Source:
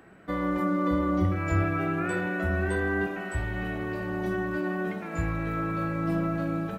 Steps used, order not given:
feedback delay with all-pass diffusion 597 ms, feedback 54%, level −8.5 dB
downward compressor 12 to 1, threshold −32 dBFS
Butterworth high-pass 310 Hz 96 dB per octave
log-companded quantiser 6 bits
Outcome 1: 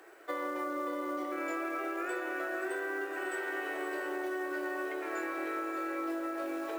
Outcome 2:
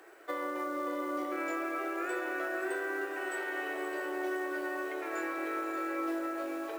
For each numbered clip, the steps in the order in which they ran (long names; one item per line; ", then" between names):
Butterworth high-pass, then log-companded quantiser, then feedback delay with all-pass diffusion, then downward compressor
Butterworth high-pass, then downward compressor, then log-companded quantiser, then feedback delay with all-pass diffusion